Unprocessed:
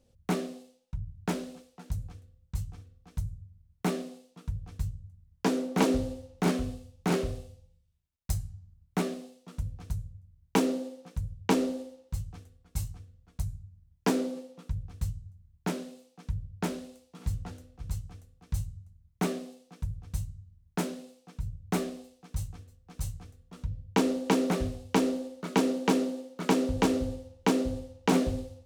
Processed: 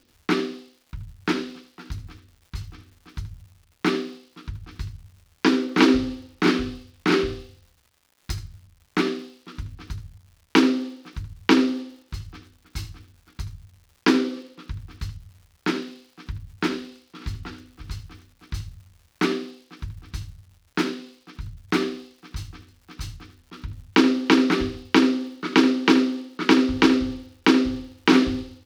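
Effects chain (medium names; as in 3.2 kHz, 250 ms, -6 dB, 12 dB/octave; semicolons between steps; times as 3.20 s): FFT filter 190 Hz 0 dB, 330 Hz +15 dB, 580 Hz -7 dB, 1.3 kHz +13 dB, 4.9 kHz +12 dB, 7.7 kHz -5 dB; crackle 300 per s -47 dBFS; delay 77 ms -14.5 dB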